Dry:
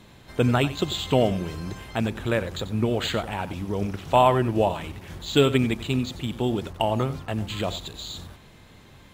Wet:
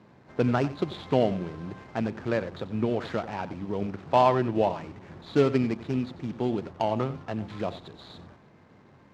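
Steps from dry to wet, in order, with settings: median filter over 15 samples; BPF 130–4700 Hz; gain -2 dB

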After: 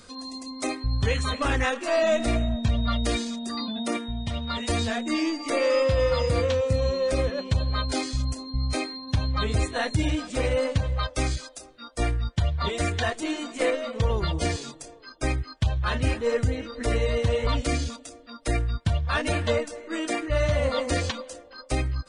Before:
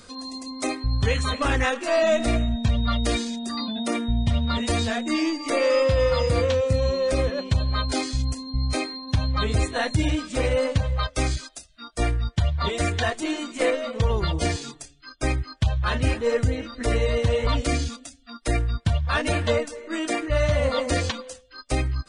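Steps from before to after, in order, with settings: 3.97–4.68 low shelf 370 Hz -7.5 dB; band-limited delay 0.427 s, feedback 32%, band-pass 610 Hz, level -18 dB; gain -2 dB

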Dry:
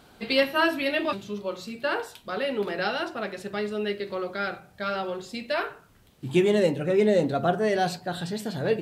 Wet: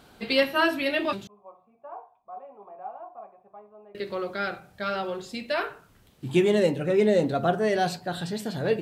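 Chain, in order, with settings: 1.27–3.95 vocal tract filter a

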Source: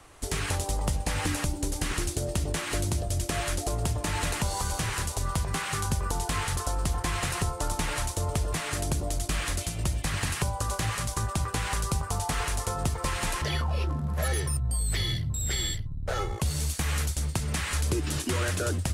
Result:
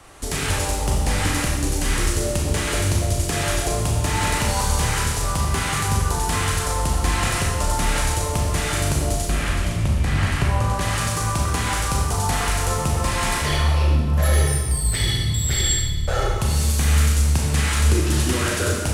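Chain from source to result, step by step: 9.25–10.81 tone controls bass +4 dB, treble -10 dB; soft clip -19 dBFS, distortion -22 dB; Schroeder reverb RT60 1.3 s, combs from 28 ms, DRR -1.5 dB; gain +5 dB

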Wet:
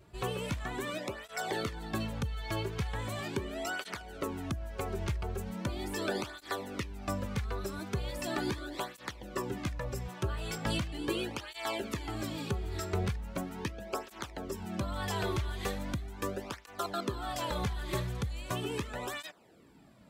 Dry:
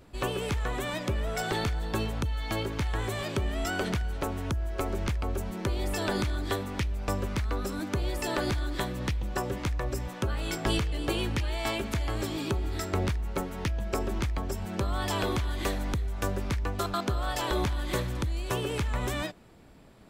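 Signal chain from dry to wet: tape flanging out of phase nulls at 0.39 Hz, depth 4.1 ms; gain -1.5 dB

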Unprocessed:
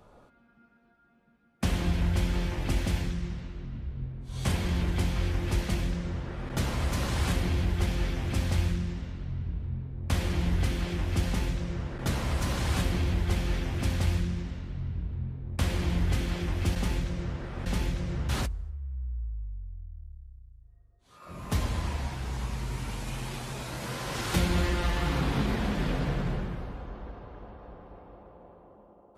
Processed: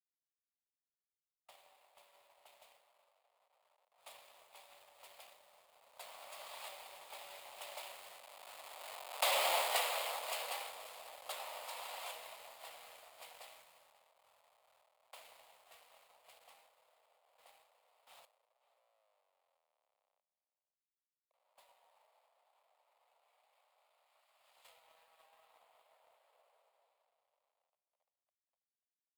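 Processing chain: level-crossing sampler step -35.5 dBFS; Doppler pass-by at 9.53, 30 m/s, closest 7.7 m; bell 5900 Hz -12.5 dB 0.3 oct; spectral gate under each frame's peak -10 dB weak; steep high-pass 570 Hz 48 dB/oct; bell 1600 Hz -11.5 dB 0.6 oct; echo 0.538 s -15.5 dB; sample leveller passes 1; mismatched tape noise reduction decoder only; gain +8 dB

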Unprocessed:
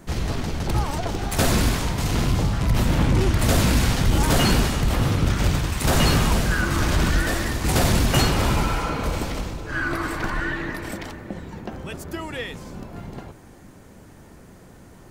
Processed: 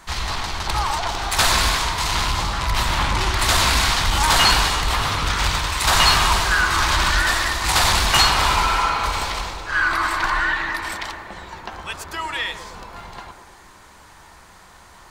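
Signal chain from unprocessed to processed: graphic EQ 125/250/500/1000/2000/4000/8000 Hz -9/-10/-8/+11/+4/+9/+4 dB; narrowing echo 0.112 s, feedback 77%, band-pass 430 Hz, level -4.5 dB

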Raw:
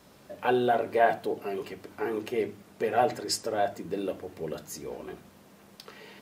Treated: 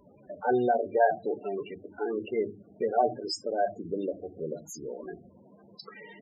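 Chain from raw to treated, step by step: loudest bins only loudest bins 16; mismatched tape noise reduction encoder only

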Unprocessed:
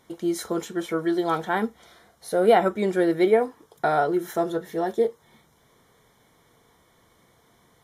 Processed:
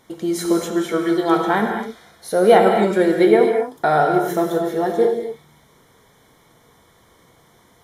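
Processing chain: non-linear reverb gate 0.28 s flat, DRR 2.5 dB; gain +4.5 dB

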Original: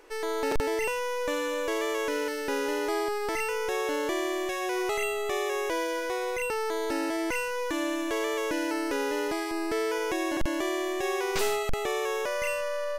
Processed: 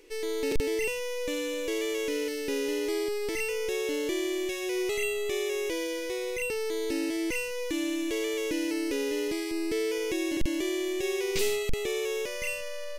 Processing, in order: band shelf 1000 Hz -14.5 dB; gain +1 dB

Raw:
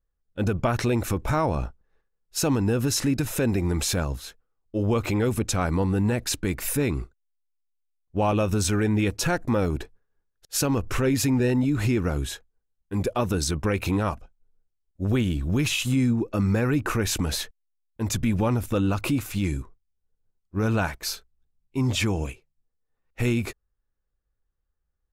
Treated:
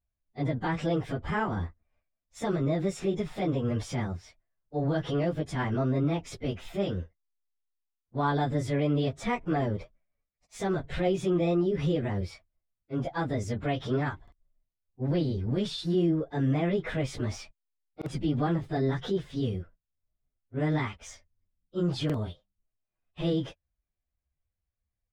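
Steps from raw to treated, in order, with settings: pitch shift by moving bins +5.5 st; air absorption 120 m; stuck buffer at 14.23/17.97/22.05, samples 2048, times 1; gain -2.5 dB

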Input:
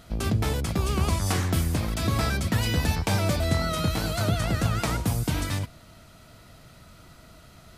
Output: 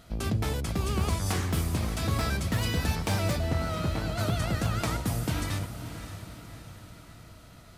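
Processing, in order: one-sided fold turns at -17 dBFS; 3.37–4.18 LPF 1300 Hz -> 2900 Hz 6 dB/oct; diffused feedback echo 0.589 s, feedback 50%, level -10.5 dB; gain -3.5 dB

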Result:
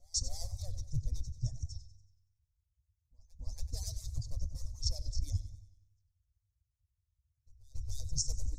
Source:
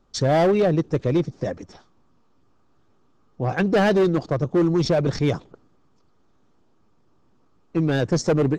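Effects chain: median-filter separation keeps percussive; gate -53 dBFS, range -16 dB; inverse Chebyshev band-stop 180–3100 Hz, stop band 40 dB; low shelf 320 Hz +11.5 dB; reverse; compressor, threshold -32 dBFS, peak gain reduction 10 dB; reverse; resonator 99 Hz, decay 0.97 s, harmonics all, mix 40%; on a send: reverse echo 0.281 s -21.5 dB; on the sum: warbling echo 94 ms, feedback 47%, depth 102 cents, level -13.5 dB; gain +8 dB

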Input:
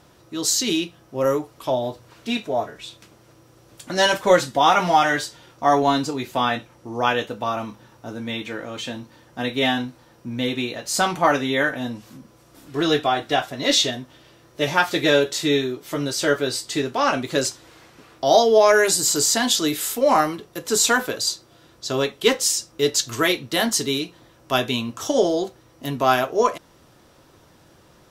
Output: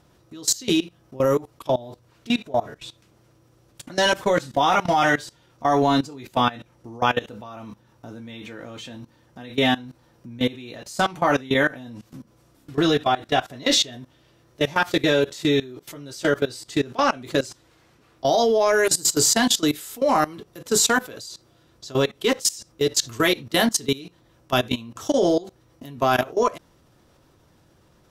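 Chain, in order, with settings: low shelf 230 Hz +6.5 dB; level quantiser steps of 20 dB; gain +2 dB

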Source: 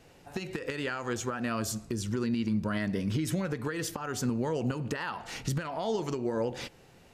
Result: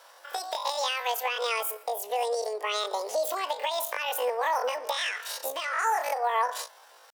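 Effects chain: pitch shift +12 st; elliptic high-pass 520 Hz, stop band 80 dB; gain +6 dB

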